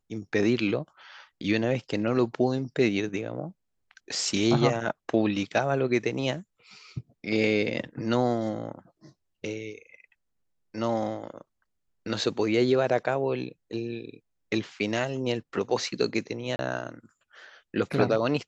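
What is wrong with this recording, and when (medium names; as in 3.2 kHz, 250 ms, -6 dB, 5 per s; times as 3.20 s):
16.56–16.59 s: dropout 30 ms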